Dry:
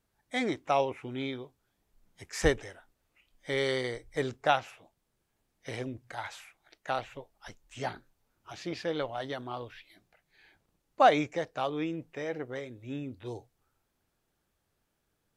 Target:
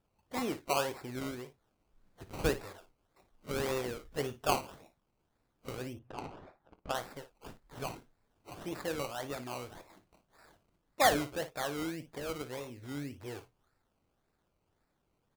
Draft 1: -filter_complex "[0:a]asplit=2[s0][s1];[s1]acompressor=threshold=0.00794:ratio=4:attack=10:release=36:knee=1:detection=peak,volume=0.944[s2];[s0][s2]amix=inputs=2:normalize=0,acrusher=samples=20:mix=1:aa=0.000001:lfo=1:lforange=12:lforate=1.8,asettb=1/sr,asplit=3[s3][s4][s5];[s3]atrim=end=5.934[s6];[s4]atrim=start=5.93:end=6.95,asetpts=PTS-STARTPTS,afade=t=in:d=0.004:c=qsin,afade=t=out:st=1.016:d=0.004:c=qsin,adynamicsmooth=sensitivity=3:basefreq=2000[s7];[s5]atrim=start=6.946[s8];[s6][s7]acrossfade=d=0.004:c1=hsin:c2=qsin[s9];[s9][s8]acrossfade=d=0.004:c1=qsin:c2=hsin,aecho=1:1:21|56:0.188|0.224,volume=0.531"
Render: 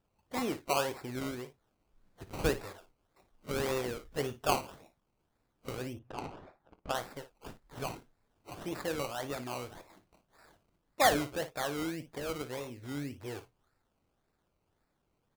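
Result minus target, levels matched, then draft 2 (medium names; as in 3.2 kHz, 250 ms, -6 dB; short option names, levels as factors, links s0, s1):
compression: peak gain reduction -6 dB
-filter_complex "[0:a]asplit=2[s0][s1];[s1]acompressor=threshold=0.00316:ratio=4:attack=10:release=36:knee=1:detection=peak,volume=0.944[s2];[s0][s2]amix=inputs=2:normalize=0,acrusher=samples=20:mix=1:aa=0.000001:lfo=1:lforange=12:lforate=1.8,asettb=1/sr,asplit=3[s3][s4][s5];[s3]atrim=end=5.934[s6];[s4]atrim=start=5.93:end=6.95,asetpts=PTS-STARTPTS,afade=t=in:d=0.004:c=qsin,afade=t=out:st=1.016:d=0.004:c=qsin,adynamicsmooth=sensitivity=3:basefreq=2000[s7];[s5]atrim=start=6.946[s8];[s6][s7]acrossfade=d=0.004:c1=hsin:c2=qsin[s9];[s9][s8]acrossfade=d=0.004:c1=qsin:c2=hsin,aecho=1:1:21|56:0.188|0.224,volume=0.531"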